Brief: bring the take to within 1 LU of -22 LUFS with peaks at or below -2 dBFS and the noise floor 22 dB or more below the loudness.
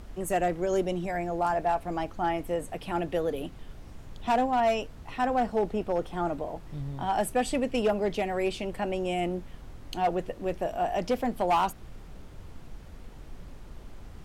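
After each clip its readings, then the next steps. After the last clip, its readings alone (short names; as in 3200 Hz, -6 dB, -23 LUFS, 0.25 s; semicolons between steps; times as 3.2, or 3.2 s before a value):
clipped 0.6%; flat tops at -19.0 dBFS; noise floor -46 dBFS; noise floor target -52 dBFS; loudness -29.5 LUFS; peak -19.0 dBFS; loudness target -22.0 LUFS
-> clip repair -19 dBFS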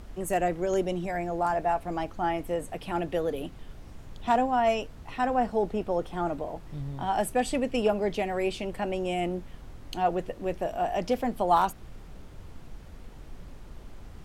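clipped 0.0%; noise floor -46 dBFS; noise floor target -51 dBFS
-> noise print and reduce 6 dB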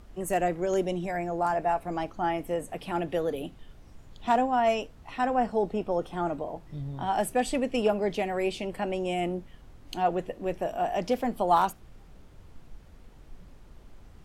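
noise floor -52 dBFS; loudness -29.0 LUFS; peak -11.0 dBFS; loudness target -22.0 LUFS
-> gain +7 dB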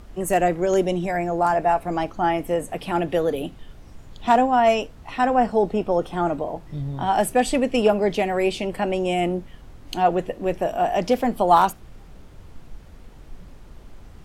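loudness -22.0 LUFS; peak -4.0 dBFS; noise floor -45 dBFS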